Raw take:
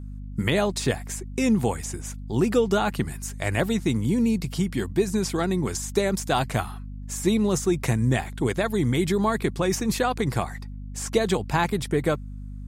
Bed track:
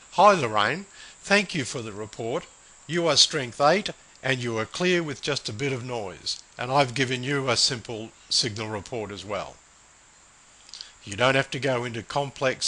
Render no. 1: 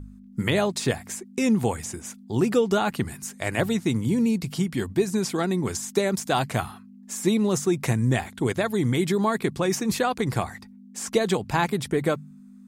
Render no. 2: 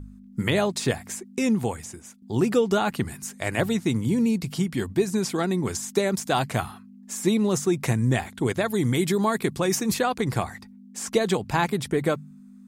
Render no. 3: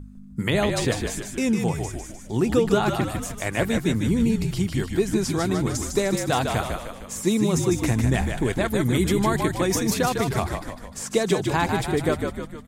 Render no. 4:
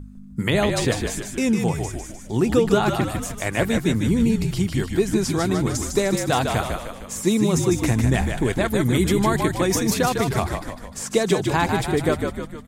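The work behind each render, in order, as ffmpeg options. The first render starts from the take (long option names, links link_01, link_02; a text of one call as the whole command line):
ffmpeg -i in.wav -af "bandreject=frequency=50:width_type=h:width=4,bandreject=frequency=100:width_type=h:width=4,bandreject=frequency=150:width_type=h:width=4" out.wav
ffmpeg -i in.wav -filter_complex "[0:a]asettb=1/sr,asplit=3[link_01][link_02][link_03];[link_01]atrim=end=8.684[link_04];[link_02]atrim=start=8.68:end=9.94,asetpts=PTS-STARTPTS,afade=type=in:duration=0.004:curve=qsin,afade=type=out:start_time=1.256:duration=0.004:curve=qsin,highshelf=frequency=6800:gain=6.5[link_05];[link_03]atrim=start=9.936[link_06];[link_04][link_05]acrossfade=duration=0.004:curve1=hsin:curve2=qsin[link_07];[link_07][link_06]acrossfade=duration=0.004:curve1=qsin:curve2=hsin,asplit=2[link_08][link_09];[link_08]atrim=end=2.22,asetpts=PTS-STARTPTS,afade=type=out:start_time=1.33:duration=0.89:silence=0.298538[link_10];[link_09]atrim=start=2.22,asetpts=PTS-STARTPTS,afade=type=in:duration=0.004:curve=hsin:silence=0.298538[link_11];[link_10][link_11]concat=n=2:v=0:a=1" out.wav
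ffmpeg -i in.wav -filter_complex "[0:a]asplit=8[link_01][link_02][link_03][link_04][link_05][link_06][link_07][link_08];[link_02]adelay=152,afreqshift=-51,volume=-5dB[link_09];[link_03]adelay=304,afreqshift=-102,volume=-10.5dB[link_10];[link_04]adelay=456,afreqshift=-153,volume=-16dB[link_11];[link_05]adelay=608,afreqshift=-204,volume=-21.5dB[link_12];[link_06]adelay=760,afreqshift=-255,volume=-27.1dB[link_13];[link_07]adelay=912,afreqshift=-306,volume=-32.6dB[link_14];[link_08]adelay=1064,afreqshift=-357,volume=-38.1dB[link_15];[link_01][link_09][link_10][link_11][link_12][link_13][link_14][link_15]amix=inputs=8:normalize=0" out.wav
ffmpeg -i in.wav -af "volume=2dB" out.wav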